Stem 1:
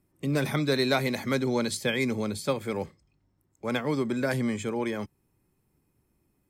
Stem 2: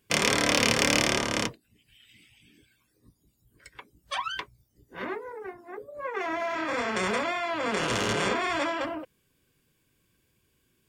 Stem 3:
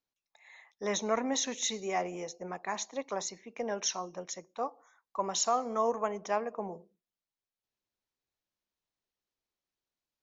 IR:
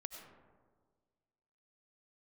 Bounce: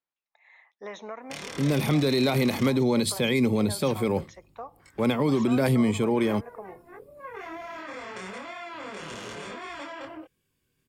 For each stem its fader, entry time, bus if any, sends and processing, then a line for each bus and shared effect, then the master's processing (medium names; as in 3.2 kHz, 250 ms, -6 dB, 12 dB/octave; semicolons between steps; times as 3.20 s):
+2.5 dB, 1.35 s, no bus, no send, level rider gain up to 6 dB; fifteen-band graphic EQ 630 Hz -3 dB, 1.6 kHz -10 dB, 6.3 kHz -10 dB
-2.5 dB, 1.20 s, bus A, no send, chorus voices 2, 1.3 Hz, delay 23 ms, depth 3 ms
+1.5 dB, 0.00 s, bus A, no send, low-pass 2.5 kHz 12 dB/octave; bass shelf 350 Hz -11.5 dB
bus A: 0.0 dB, compression 6:1, threshold -35 dBFS, peak gain reduction 11 dB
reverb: none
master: peak limiter -15 dBFS, peak gain reduction 8.5 dB